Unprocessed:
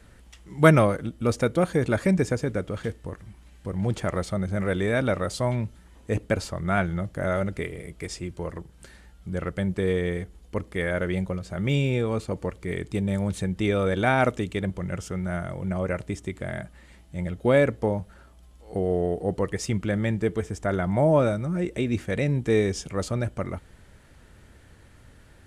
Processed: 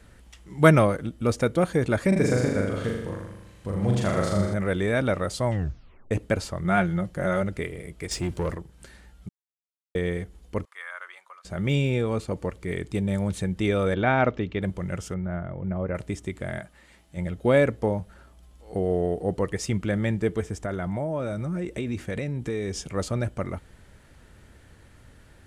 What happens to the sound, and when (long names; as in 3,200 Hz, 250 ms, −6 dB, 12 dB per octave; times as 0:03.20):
0:02.08–0:04.54: flutter between parallel walls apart 6.9 metres, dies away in 0.96 s
0:05.46: tape stop 0.65 s
0:06.64–0:07.42: comb filter 5.6 ms, depth 52%
0:08.11–0:08.55: leveller curve on the samples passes 2
0:09.29–0:09.95: silence
0:10.65–0:11.45: four-pole ladder high-pass 1,000 Hz, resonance 60%
0:13.94–0:14.62: Bessel low-pass filter 3,200 Hz, order 8
0:15.14–0:15.95: head-to-tape spacing loss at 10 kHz 39 dB
0:16.59–0:17.17: low-shelf EQ 230 Hz −9.5 dB
0:20.54–0:22.84: downward compressor, threshold −25 dBFS